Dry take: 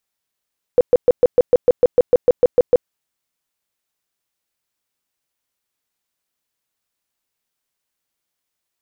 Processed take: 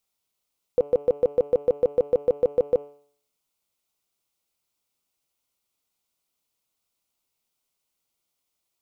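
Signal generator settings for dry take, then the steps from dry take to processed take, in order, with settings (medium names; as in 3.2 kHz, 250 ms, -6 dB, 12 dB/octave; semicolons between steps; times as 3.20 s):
tone bursts 495 Hz, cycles 14, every 0.15 s, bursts 14, -6 dBFS
peaking EQ 1.7 kHz -15 dB 0.25 oct; de-hum 144.3 Hz, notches 22; peak limiter -13.5 dBFS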